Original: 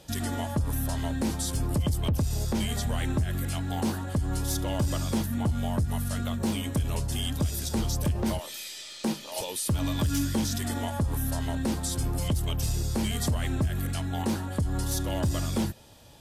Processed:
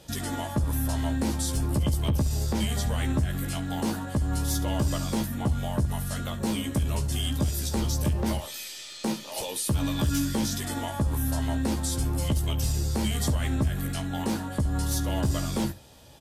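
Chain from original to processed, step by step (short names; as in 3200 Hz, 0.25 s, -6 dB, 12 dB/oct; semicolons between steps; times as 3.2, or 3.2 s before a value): early reflections 15 ms -6 dB, 69 ms -16 dB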